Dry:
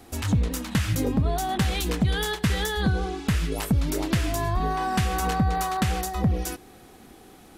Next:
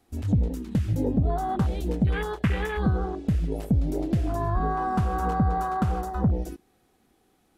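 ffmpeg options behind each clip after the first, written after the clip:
-af "afwtdn=0.0355"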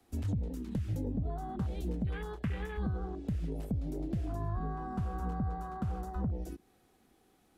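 -filter_complex "[0:a]acrossover=split=92|240[s0][s1][s2];[s0]acompressor=threshold=0.0178:ratio=4[s3];[s1]acompressor=threshold=0.0158:ratio=4[s4];[s2]acompressor=threshold=0.00794:ratio=4[s5];[s3][s4][s5]amix=inputs=3:normalize=0,volume=0.794"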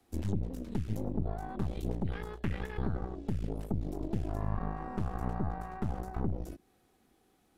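-af "aeval=exprs='0.0841*(cos(1*acos(clip(val(0)/0.0841,-1,1)))-cos(1*PI/2))+0.0299*(cos(4*acos(clip(val(0)/0.0841,-1,1)))-cos(4*PI/2))':c=same,volume=0.841"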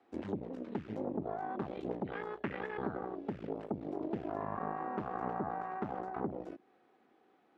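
-af "highpass=320,lowpass=2100,volume=1.58"

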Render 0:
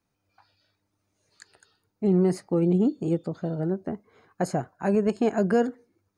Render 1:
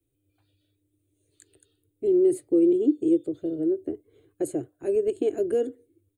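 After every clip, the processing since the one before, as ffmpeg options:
-filter_complex "[0:a]firequalizer=gain_entry='entry(130,0);entry(190,-30);entry(300,5);entry(860,-27);entry(3400,-5);entry(5100,-26);entry(7900,0)':delay=0.05:min_phase=1,acrossover=split=200|1100|1600[s0][s1][s2][s3];[s0]acompressor=threshold=0.00251:ratio=6[s4];[s4][s1][s2][s3]amix=inputs=4:normalize=0,volume=1.68"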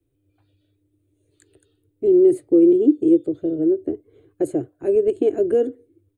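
-af "highshelf=f=2900:g=-11,volume=2.11"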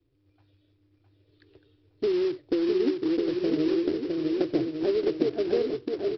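-af "acompressor=threshold=0.0708:ratio=20,aresample=11025,acrusher=bits=4:mode=log:mix=0:aa=0.000001,aresample=44100,aecho=1:1:660|1155|1526|1805|2014:0.631|0.398|0.251|0.158|0.1"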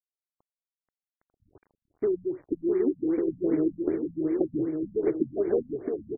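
-af "acrusher=bits=8:mix=0:aa=0.000001,aecho=1:1:482|964|1446|1928:0.224|0.0985|0.0433|0.0191,afftfilt=real='re*lt(b*sr/1024,230*pow(2400/230,0.5+0.5*sin(2*PI*2.6*pts/sr)))':imag='im*lt(b*sr/1024,230*pow(2400/230,0.5+0.5*sin(2*PI*2.6*pts/sr)))':win_size=1024:overlap=0.75"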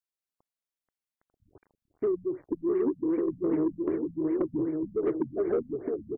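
-af "asoftclip=type=tanh:threshold=0.112"

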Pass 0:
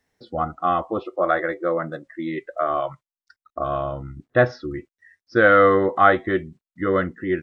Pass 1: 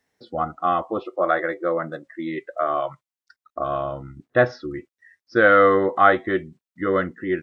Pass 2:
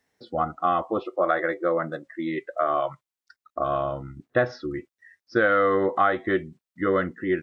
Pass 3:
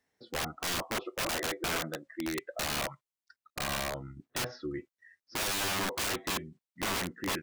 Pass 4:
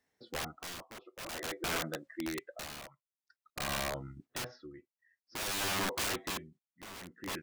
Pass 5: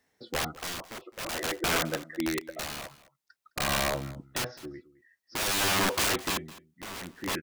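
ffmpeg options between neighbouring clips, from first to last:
-af "lowshelf=f=85:g=-11.5"
-af "acompressor=threshold=0.141:ratio=5"
-af "aeval=exprs='(mod(11.2*val(0)+1,2)-1)/11.2':c=same,volume=0.501"
-af "tremolo=f=0.51:d=0.82,volume=0.891"
-af "aecho=1:1:211:0.112,volume=2.37"

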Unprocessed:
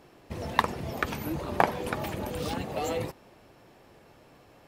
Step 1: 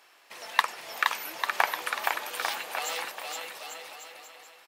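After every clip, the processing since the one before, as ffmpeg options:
-filter_complex "[0:a]highpass=1300,asplit=2[s0][s1];[s1]aecho=0:1:470|846|1147|1387|1580:0.631|0.398|0.251|0.158|0.1[s2];[s0][s2]amix=inputs=2:normalize=0,volume=1.78"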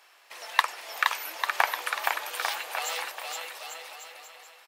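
-af "highpass=470,volume=1.12"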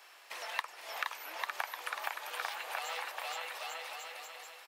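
-filter_complex "[0:a]acrossover=split=540|1300|3700[s0][s1][s2][s3];[s0]acompressor=threshold=0.001:ratio=4[s4];[s1]acompressor=threshold=0.00794:ratio=4[s5];[s2]acompressor=threshold=0.00708:ratio=4[s6];[s3]acompressor=threshold=0.00251:ratio=4[s7];[s4][s5][s6][s7]amix=inputs=4:normalize=0,volume=1.12"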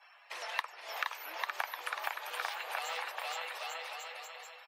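-af "afftdn=nr=23:nf=-58,volume=1.12"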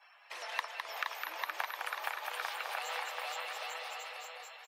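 -af "aecho=1:1:208:0.562,volume=0.841"

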